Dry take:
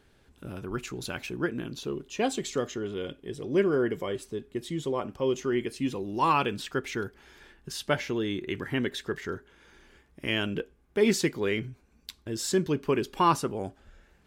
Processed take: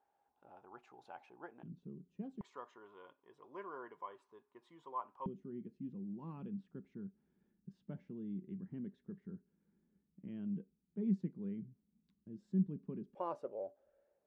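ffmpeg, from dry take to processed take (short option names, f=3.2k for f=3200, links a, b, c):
-af "asetnsamples=n=441:p=0,asendcmd='1.63 bandpass f 180;2.41 bandpass f 990;5.26 bandpass f 190;13.15 bandpass f 570',bandpass=f=810:t=q:w=9:csg=0"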